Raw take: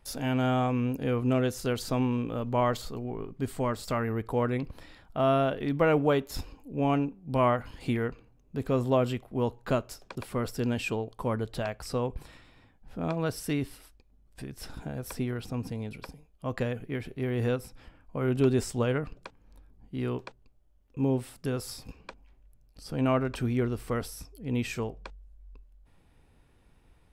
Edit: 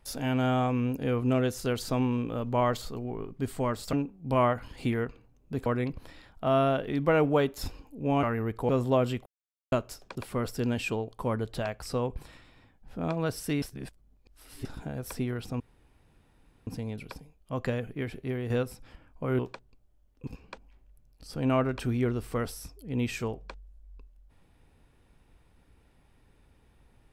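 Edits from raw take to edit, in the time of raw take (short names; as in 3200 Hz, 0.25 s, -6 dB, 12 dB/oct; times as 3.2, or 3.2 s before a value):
3.93–4.39 swap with 6.96–8.69
9.26–9.72 mute
13.62–14.65 reverse
15.6 insert room tone 1.07 s
17.18–17.43 fade out, to -7 dB
18.32–20.12 cut
21–21.83 cut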